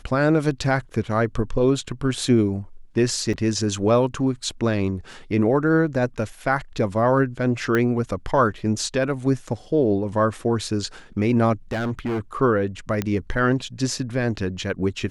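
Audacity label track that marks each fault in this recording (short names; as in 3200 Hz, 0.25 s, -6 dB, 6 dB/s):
3.330000	3.340000	gap 5.2 ms
7.750000	7.750000	pop -10 dBFS
11.710000	12.200000	clipped -22 dBFS
13.020000	13.020000	pop -10 dBFS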